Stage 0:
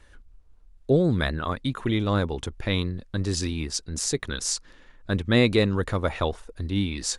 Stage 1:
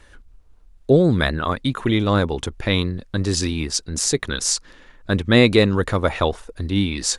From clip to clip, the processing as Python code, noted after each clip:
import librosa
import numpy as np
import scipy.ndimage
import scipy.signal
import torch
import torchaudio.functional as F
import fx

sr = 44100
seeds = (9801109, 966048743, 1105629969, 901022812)

y = fx.low_shelf(x, sr, hz=130.0, db=-3.5)
y = y * 10.0 ** (6.5 / 20.0)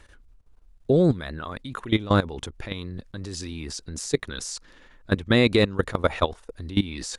y = fx.level_steps(x, sr, step_db=17)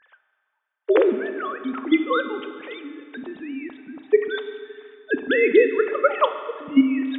y = fx.sine_speech(x, sr)
y = fx.rev_fdn(y, sr, rt60_s=2.1, lf_ratio=1.1, hf_ratio=0.95, size_ms=23.0, drr_db=7.5)
y = y * 10.0 ** (2.0 / 20.0)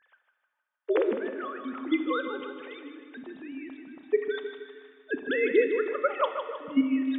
y = fx.echo_feedback(x, sr, ms=155, feedback_pct=48, wet_db=-8)
y = y * 10.0 ** (-8.0 / 20.0)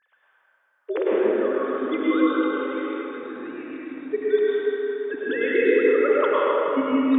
y = fx.rev_plate(x, sr, seeds[0], rt60_s=3.7, hf_ratio=0.45, predelay_ms=90, drr_db=-7.5)
y = y * 10.0 ** (-2.0 / 20.0)